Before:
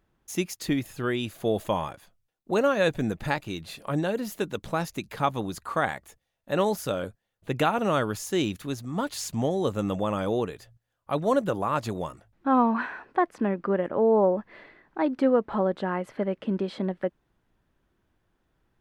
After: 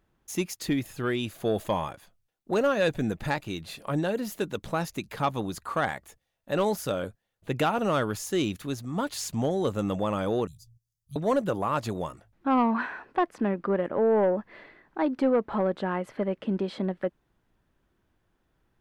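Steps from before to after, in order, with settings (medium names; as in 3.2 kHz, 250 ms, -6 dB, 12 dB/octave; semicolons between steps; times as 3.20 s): 10.47–11.16 s: elliptic band-stop 140–5200 Hz, stop band 50 dB; saturation -15 dBFS, distortion -19 dB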